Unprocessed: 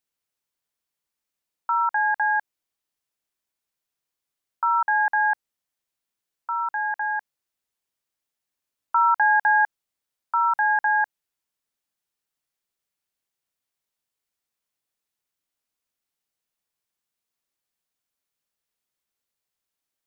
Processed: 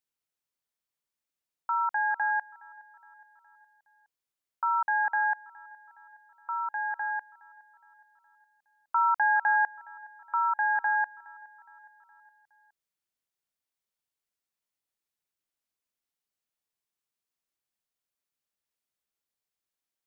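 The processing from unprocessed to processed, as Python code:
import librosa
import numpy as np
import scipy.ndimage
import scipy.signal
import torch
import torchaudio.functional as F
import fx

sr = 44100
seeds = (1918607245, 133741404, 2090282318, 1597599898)

y = fx.echo_feedback(x, sr, ms=416, feedback_pct=57, wet_db=-23.5)
y = y * librosa.db_to_amplitude(-5.5)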